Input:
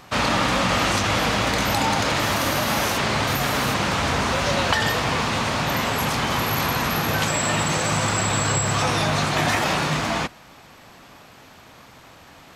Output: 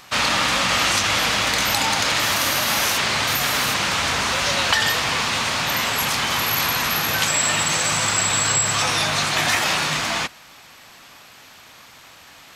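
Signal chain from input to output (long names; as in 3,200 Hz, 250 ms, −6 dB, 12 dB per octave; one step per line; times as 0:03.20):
tilt shelving filter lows −6.5 dB, about 1,100 Hz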